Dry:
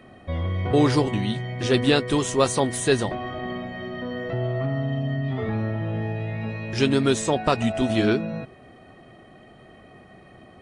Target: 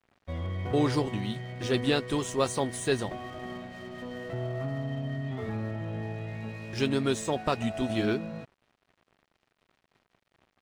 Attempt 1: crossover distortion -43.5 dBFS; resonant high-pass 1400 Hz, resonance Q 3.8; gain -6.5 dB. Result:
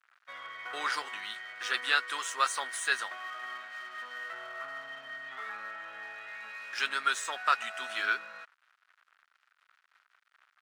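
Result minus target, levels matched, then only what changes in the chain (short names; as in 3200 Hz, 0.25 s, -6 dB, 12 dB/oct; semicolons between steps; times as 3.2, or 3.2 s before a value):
1000 Hz band +5.0 dB
remove: resonant high-pass 1400 Hz, resonance Q 3.8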